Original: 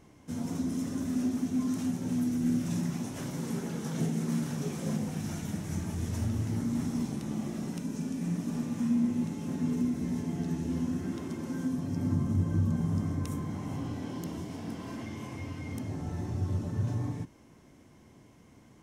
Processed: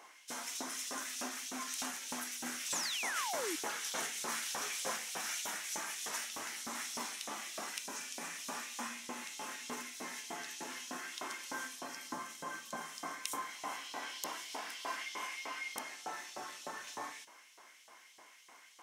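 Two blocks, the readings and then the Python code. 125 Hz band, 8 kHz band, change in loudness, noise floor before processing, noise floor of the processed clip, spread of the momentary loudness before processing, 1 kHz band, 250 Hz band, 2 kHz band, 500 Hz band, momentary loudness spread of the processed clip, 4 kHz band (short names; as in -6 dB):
-35.0 dB, +7.5 dB, -7.0 dB, -57 dBFS, -60 dBFS, 9 LU, +5.0 dB, -21.5 dB, +8.5 dB, -5.5 dB, 8 LU, +9.0 dB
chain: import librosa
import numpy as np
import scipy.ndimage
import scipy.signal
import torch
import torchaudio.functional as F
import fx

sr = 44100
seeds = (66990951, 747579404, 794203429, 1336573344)

y = scipy.signal.sosfilt(scipy.signal.butter(2, 200.0, 'highpass', fs=sr, output='sos'), x)
y = fx.filter_lfo_highpass(y, sr, shape='saw_up', hz=3.3, low_hz=760.0, high_hz=3900.0, q=1.4)
y = fx.spec_paint(y, sr, seeds[0], shape='fall', start_s=2.71, length_s=0.85, low_hz=290.0, high_hz=8300.0, level_db=-47.0)
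y = y * librosa.db_to_amplitude(7.0)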